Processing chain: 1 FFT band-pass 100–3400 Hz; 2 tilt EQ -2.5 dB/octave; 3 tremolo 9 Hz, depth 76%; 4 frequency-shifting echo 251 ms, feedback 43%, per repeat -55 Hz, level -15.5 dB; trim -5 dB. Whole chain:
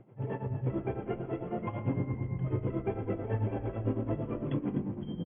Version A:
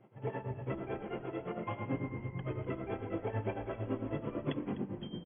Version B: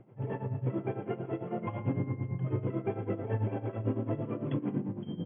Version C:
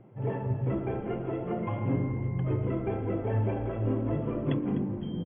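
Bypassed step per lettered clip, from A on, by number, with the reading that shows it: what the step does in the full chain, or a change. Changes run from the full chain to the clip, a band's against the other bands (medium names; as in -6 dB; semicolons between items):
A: 2, 2 kHz band +6.0 dB; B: 4, echo-to-direct -14.5 dB to none; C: 3, loudness change +3.5 LU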